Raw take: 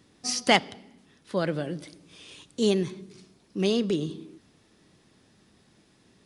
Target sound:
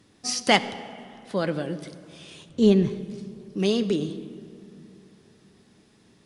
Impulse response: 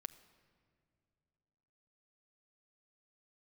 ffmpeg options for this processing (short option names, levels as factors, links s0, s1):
-filter_complex "[0:a]asettb=1/sr,asplit=3[s0][s1][s2];[s0]atrim=end=2.494[s3];[s1]atrim=start=2.49:end=2.91,asetpts=PTS-STARTPTS,afade=t=in:d=0.004:c=qsin,afade=t=out:st=0.416:d=0.004:c=qsin,aemphasis=mode=reproduction:type=bsi[s4];[s2]atrim=start=2.906[s5];[s3][s4]acrossfade=d=0.004:c1=hsin:c2=qsin[s6];[s6][s5]acrossfade=d=0.004:c1=qsin:c2=hsin[s7];[1:a]atrim=start_sample=2205,asetrate=29547,aresample=44100[s8];[s7][s8]afir=irnorm=-1:irlink=0,volume=1.5"